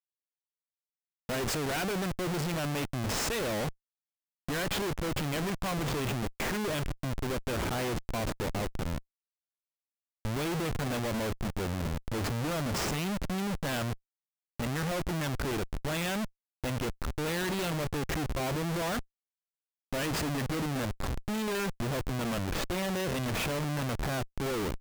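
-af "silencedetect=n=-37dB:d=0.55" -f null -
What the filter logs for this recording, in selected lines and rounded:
silence_start: 0.00
silence_end: 1.29 | silence_duration: 1.29
silence_start: 3.70
silence_end: 4.49 | silence_duration: 0.79
silence_start: 8.98
silence_end: 10.25 | silence_duration: 1.27
silence_start: 13.94
silence_end: 14.60 | silence_duration: 0.66
silence_start: 19.01
silence_end: 19.93 | silence_duration: 0.92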